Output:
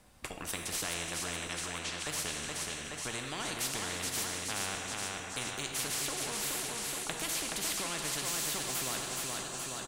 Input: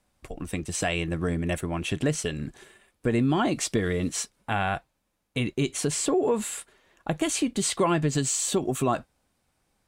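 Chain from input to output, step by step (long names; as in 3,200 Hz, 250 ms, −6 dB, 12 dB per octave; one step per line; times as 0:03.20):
0:01.47–0:02.07: Chebyshev band-pass filter 1,200–5,000 Hz, order 2
repeating echo 423 ms, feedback 48%, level −8 dB
on a send at −7 dB: convolution reverb, pre-delay 3 ms
on the sum: every bin compressed towards the loudest bin 4 to 1
level −5.5 dB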